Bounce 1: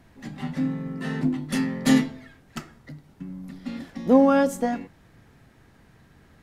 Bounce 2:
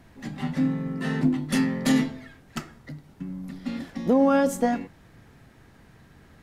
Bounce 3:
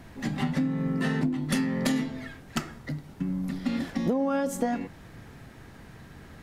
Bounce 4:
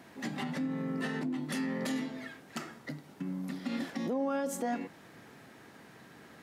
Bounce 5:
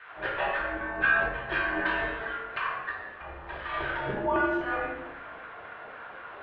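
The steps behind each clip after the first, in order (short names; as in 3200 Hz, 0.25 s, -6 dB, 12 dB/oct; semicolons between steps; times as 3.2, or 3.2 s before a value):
limiter -14 dBFS, peak gain reduction 8 dB; gain +2 dB
compressor 8:1, threshold -29 dBFS, peak gain reduction 13.5 dB; gain +5.5 dB
limiter -21.5 dBFS, peak gain reduction 8 dB; HPF 230 Hz 12 dB/oct; gain -2.5 dB
LFO high-pass saw down 3.9 Hz 650–1800 Hz; shoebox room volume 510 m³, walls mixed, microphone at 2.5 m; mistuned SSB -210 Hz 200–3300 Hz; gain +4 dB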